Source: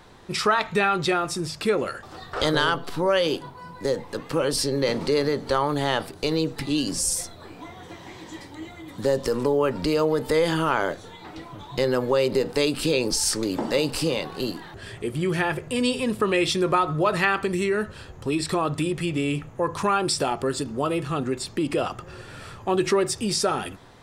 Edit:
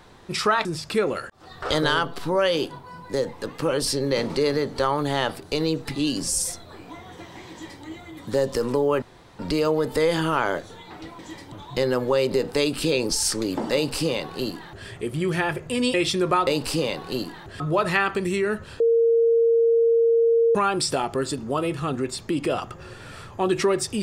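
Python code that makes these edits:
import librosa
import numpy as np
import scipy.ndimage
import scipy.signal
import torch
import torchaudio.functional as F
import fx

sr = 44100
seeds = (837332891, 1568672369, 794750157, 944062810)

y = fx.edit(x, sr, fx.cut(start_s=0.65, length_s=0.71),
    fx.fade_in_span(start_s=2.01, length_s=0.3),
    fx.duplicate(start_s=8.22, length_s=0.33, to_s=11.53),
    fx.insert_room_tone(at_s=9.73, length_s=0.37),
    fx.duplicate(start_s=13.75, length_s=1.13, to_s=16.88),
    fx.cut(start_s=15.95, length_s=0.4),
    fx.bleep(start_s=18.08, length_s=1.75, hz=461.0, db=-15.0), tone=tone)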